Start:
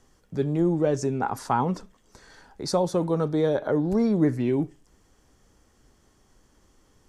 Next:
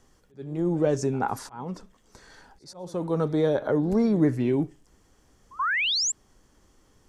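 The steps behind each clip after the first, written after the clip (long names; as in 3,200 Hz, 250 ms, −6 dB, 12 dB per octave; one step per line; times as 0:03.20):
volume swells 471 ms
sound drawn into the spectrogram rise, 0:05.59–0:06.12, 990–7,800 Hz −25 dBFS
echo ahead of the sound 82 ms −21.5 dB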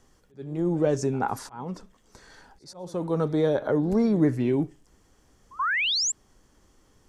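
no processing that can be heard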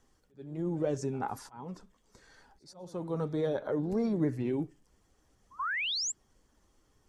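spectral magnitudes quantised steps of 15 dB
level −7.5 dB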